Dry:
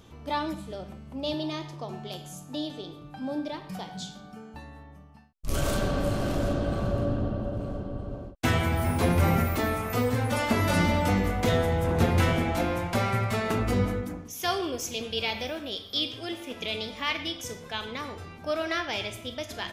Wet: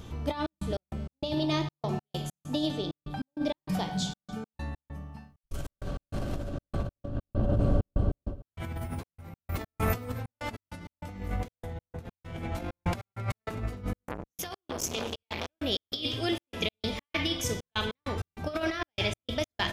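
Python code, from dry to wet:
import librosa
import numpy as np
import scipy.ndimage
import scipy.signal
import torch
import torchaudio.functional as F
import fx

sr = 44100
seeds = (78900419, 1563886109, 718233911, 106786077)

p1 = fx.over_compress(x, sr, threshold_db=-32.0, ratio=-0.5)
p2 = fx.low_shelf(p1, sr, hz=130.0, db=9.0)
p3 = p2 + fx.echo_single(p2, sr, ms=267, db=-20.0, dry=0)
p4 = fx.step_gate(p3, sr, bpm=98, pattern='xxx.x.x.', floor_db=-60.0, edge_ms=4.5)
y = fx.transformer_sat(p4, sr, knee_hz=1700.0, at=(13.97, 15.55))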